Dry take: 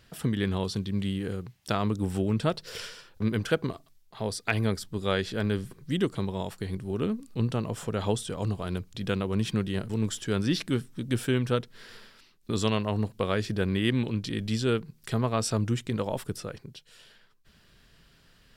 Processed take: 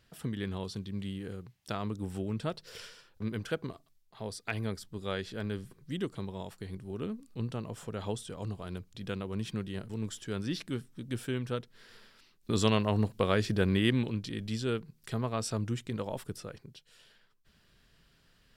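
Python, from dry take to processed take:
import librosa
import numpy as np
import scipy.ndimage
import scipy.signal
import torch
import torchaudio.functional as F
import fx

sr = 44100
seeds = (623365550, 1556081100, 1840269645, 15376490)

y = fx.gain(x, sr, db=fx.line((11.88, -8.0), (12.59, 0.0), (13.78, 0.0), (14.3, -6.0)))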